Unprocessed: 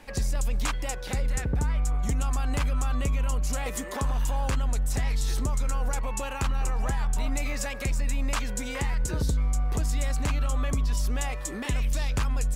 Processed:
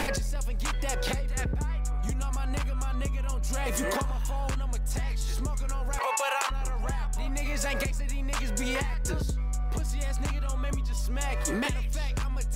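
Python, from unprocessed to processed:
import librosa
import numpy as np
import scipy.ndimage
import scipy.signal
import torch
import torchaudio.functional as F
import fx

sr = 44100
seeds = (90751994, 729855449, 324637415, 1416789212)

y = fx.highpass(x, sr, hz=550.0, slope=24, at=(5.97, 6.5), fade=0.02)
y = fx.env_flatten(y, sr, amount_pct=100)
y = y * 10.0 ** (-5.5 / 20.0)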